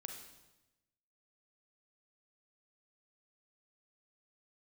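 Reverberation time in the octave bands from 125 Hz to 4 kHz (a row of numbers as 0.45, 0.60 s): 1.2, 1.1, 1.0, 0.95, 0.95, 0.95 s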